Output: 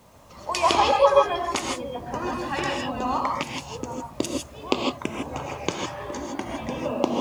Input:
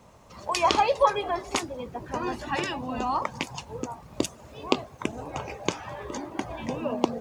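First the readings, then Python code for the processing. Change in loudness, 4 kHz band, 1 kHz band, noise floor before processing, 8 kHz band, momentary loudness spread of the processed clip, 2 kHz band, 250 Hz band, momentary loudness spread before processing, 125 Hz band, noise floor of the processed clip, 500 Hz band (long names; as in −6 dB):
+3.5 dB, +3.5 dB, +3.0 dB, −51 dBFS, +2.5 dB, 14 LU, +2.5 dB, +2.5 dB, 14 LU, +2.0 dB, −46 dBFS, +4.5 dB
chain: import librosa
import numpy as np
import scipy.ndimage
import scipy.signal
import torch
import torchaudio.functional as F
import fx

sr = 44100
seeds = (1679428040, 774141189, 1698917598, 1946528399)

y = fx.rev_gated(x, sr, seeds[0], gate_ms=180, shape='rising', drr_db=0.5)
y = fx.quant_dither(y, sr, seeds[1], bits=10, dither='none')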